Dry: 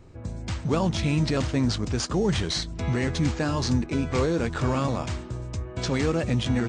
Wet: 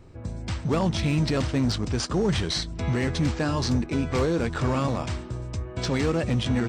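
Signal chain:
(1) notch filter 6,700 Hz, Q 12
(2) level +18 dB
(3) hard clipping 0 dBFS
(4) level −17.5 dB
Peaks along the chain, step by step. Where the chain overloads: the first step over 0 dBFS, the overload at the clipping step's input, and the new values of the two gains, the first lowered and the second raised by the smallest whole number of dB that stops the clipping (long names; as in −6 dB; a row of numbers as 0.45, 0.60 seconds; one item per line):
−13.0, +5.0, 0.0, −17.5 dBFS
step 2, 5.0 dB
step 2 +13 dB, step 4 −12.5 dB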